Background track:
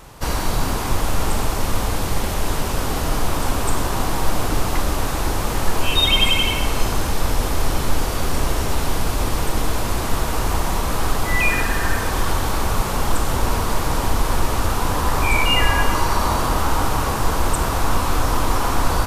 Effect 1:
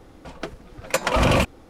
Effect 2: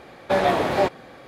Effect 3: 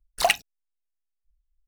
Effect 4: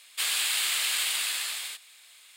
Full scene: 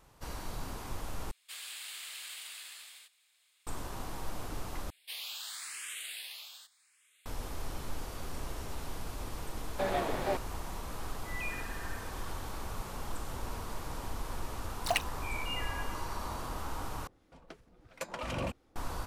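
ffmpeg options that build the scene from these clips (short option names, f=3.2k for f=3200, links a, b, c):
-filter_complex "[4:a]asplit=2[a][b];[0:a]volume=-19.5dB[c];[b]asplit=2[d][e];[e]afreqshift=0.86[f];[d][f]amix=inputs=2:normalize=1[g];[2:a]aeval=exprs='sgn(val(0))*max(abs(val(0))-0.01,0)':c=same[h];[1:a]acrossover=split=1300[i][j];[i]aeval=exprs='val(0)*(1-0.5/2+0.5/2*cos(2*PI*2.9*n/s))':c=same[k];[j]aeval=exprs='val(0)*(1-0.5/2-0.5/2*cos(2*PI*2.9*n/s))':c=same[l];[k][l]amix=inputs=2:normalize=0[m];[c]asplit=4[n][o][p][q];[n]atrim=end=1.314[r];[a]atrim=end=2.36,asetpts=PTS-STARTPTS,volume=-17dB[s];[o]atrim=start=3.666:end=4.904[t];[g]atrim=end=2.36,asetpts=PTS-STARTPTS,volume=-11.5dB[u];[p]atrim=start=7.256:end=17.074[v];[m]atrim=end=1.69,asetpts=PTS-STARTPTS,volume=-15.5dB[w];[q]atrim=start=18.756[x];[h]atrim=end=1.27,asetpts=PTS-STARTPTS,volume=-12dB,afade=t=in:d=0.004:c=hsin,afade=t=out:st=1.266:d=0.004:c=hsin,adelay=9490[y];[3:a]atrim=end=1.67,asetpts=PTS-STARTPTS,volume=-10dB,afade=t=in:d=0.004:c=hsin,afade=t=out:st=1.666:d=0.004:c=hsin,adelay=14660[z];[r][s]acrossfade=d=0.004:c1=hsin:c2=hsin[aa];[aa][t]acrossfade=d=0.004:c1=hsin:c2=hsin[ab];[ab][u]acrossfade=d=0.004:c1=hsin:c2=hsin[ac];[ac][v]acrossfade=d=0.004:c1=hsin:c2=hsin[ad];[ad][w]acrossfade=d=0.004:c1=hsin:c2=hsin[ae];[ae][x]acrossfade=d=0.004:c1=hsin:c2=hsin[af];[af][y][z]amix=inputs=3:normalize=0"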